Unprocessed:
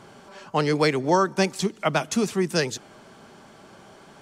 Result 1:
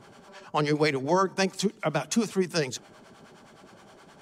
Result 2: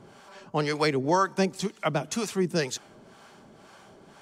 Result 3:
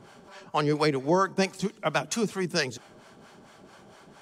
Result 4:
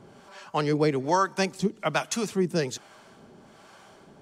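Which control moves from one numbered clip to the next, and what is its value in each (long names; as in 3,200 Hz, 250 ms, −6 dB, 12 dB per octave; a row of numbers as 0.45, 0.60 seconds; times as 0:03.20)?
two-band tremolo in antiphase, speed: 9.6, 2, 4.4, 1.2 Hertz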